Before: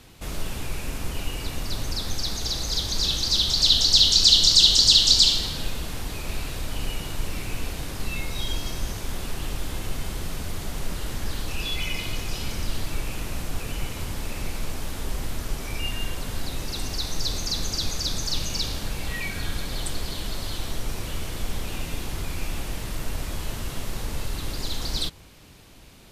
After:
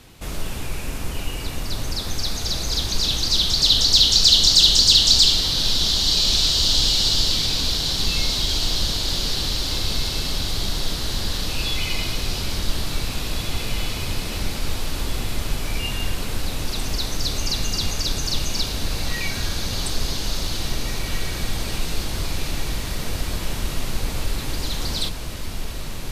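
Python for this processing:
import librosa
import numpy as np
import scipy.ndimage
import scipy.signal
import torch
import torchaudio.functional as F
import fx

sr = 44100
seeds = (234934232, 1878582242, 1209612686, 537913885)

p1 = 10.0 ** (-12.0 / 20.0) * np.tanh(x / 10.0 ** (-12.0 / 20.0))
p2 = x + (p1 * librosa.db_to_amplitude(-6.0))
p3 = fx.echo_diffused(p2, sr, ms=1969, feedback_pct=58, wet_db=-4.5)
y = p3 * librosa.db_to_amplitude(-1.0)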